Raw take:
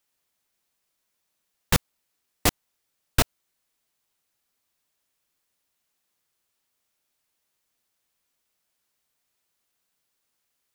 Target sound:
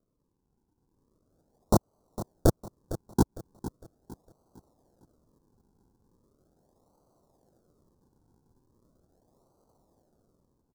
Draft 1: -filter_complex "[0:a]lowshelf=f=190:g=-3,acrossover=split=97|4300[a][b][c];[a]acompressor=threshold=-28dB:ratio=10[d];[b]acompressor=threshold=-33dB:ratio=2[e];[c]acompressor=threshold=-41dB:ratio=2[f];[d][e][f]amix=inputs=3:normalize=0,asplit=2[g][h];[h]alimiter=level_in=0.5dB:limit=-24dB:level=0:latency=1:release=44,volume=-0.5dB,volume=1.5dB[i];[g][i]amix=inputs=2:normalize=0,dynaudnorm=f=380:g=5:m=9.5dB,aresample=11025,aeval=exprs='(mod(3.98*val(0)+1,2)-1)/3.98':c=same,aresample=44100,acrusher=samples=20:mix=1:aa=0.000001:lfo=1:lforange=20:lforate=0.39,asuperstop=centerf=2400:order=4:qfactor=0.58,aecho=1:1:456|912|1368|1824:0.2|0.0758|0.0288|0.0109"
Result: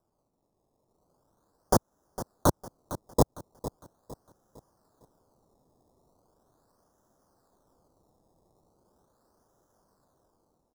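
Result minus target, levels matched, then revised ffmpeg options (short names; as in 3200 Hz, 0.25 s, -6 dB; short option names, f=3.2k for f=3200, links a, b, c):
decimation with a swept rate: distortion -4 dB
-filter_complex "[0:a]lowshelf=f=190:g=-3,acrossover=split=97|4300[a][b][c];[a]acompressor=threshold=-28dB:ratio=10[d];[b]acompressor=threshold=-33dB:ratio=2[e];[c]acompressor=threshold=-41dB:ratio=2[f];[d][e][f]amix=inputs=3:normalize=0,asplit=2[g][h];[h]alimiter=level_in=0.5dB:limit=-24dB:level=0:latency=1:release=44,volume=-0.5dB,volume=1.5dB[i];[g][i]amix=inputs=2:normalize=0,dynaudnorm=f=380:g=5:m=9.5dB,aresample=11025,aeval=exprs='(mod(3.98*val(0)+1,2)-1)/3.98':c=same,aresample=44100,acrusher=samples=49:mix=1:aa=0.000001:lfo=1:lforange=49:lforate=0.39,asuperstop=centerf=2400:order=4:qfactor=0.58,aecho=1:1:456|912|1368|1824:0.2|0.0758|0.0288|0.0109"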